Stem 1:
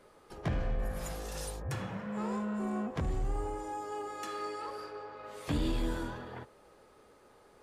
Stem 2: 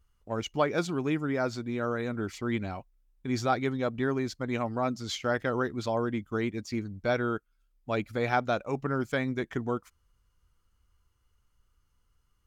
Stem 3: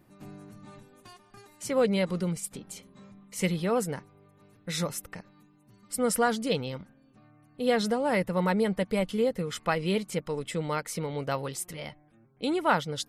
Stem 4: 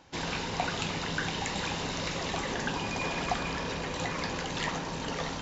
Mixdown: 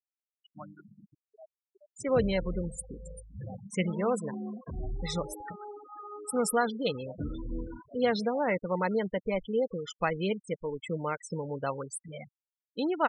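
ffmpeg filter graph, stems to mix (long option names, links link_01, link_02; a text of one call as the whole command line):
ffmpeg -i stem1.wav -i stem2.wav -i stem3.wav -filter_complex "[0:a]acrossover=split=670[link_01][link_02];[link_01]aeval=exprs='val(0)*(1-0.5/2+0.5/2*cos(2*PI*2.2*n/s))':channel_layout=same[link_03];[link_02]aeval=exprs='val(0)*(1-0.5/2-0.5/2*cos(2*PI*2.2*n/s))':channel_layout=same[link_04];[link_03][link_04]amix=inputs=2:normalize=0,adelay=1700,volume=-1.5dB,asplit=2[link_05][link_06];[link_06]volume=-23.5dB[link_07];[1:a]highpass=650,asplit=2[link_08][link_09];[link_09]afreqshift=2.3[link_10];[link_08][link_10]amix=inputs=2:normalize=1,volume=-15dB,asplit=2[link_11][link_12];[link_12]volume=-16dB[link_13];[2:a]adynamicequalizer=threshold=0.00631:dfrequency=160:dqfactor=1.6:tfrequency=160:tqfactor=1.6:attack=5:release=100:ratio=0.375:range=3.5:mode=cutabove:tftype=bell,adelay=350,volume=-1.5dB[link_14];[link_07][link_13]amix=inputs=2:normalize=0,aecho=0:1:223|446|669|892|1115|1338|1561|1784:1|0.54|0.292|0.157|0.085|0.0459|0.0248|0.0134[link_15];[link_05][link_11][link_14][link_15]amix=inputs=4:normalize=0,afftfilt=real='re*gte(hypot(re,im),0.0282)':imag='im*gte(hypot(re,im),0.0282)':win_size=1024:overlap=0.75" out.wav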